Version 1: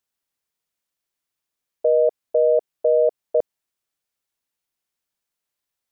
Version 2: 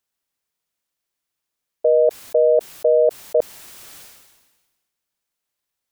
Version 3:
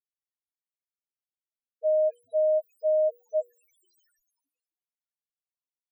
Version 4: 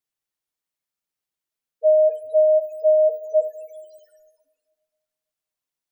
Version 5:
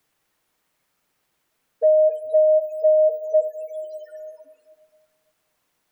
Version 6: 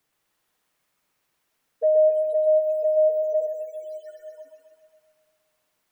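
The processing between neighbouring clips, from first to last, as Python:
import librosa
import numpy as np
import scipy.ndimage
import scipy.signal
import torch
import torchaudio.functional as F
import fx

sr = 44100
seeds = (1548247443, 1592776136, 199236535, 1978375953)

y1 = fx.sustainer(x, sr, db_per_s=44.0)
y1 = F.gain(torch.from_numpy(y1), 2.0).numpy()
y2 = fx.spec_topn(y1, sr, count=1)
y2 = fx.hum_notches(y2, sr, base_hz=60, count=8)
y2 = F.gain(torch.from_numpy(y2), -1.0).numpy()
y3 = fx.room_shoebox(y2, sr, seeds[0], volume_m3=1800.0, walls='mixed', distance_m=0.5)
y3 = F.gain(torch.from_numpy(y3), 7.5).numpy()
y4 = fx.band_squash(y3, sr, depth_pct=70)
y5 = fx.echo_thinned(y4, sr, ms=129, feedback_pct=70, hz=480.0, wet_db=-4)
y5 = F.gain(torch.from_numpy(y5), -4.0).numpy()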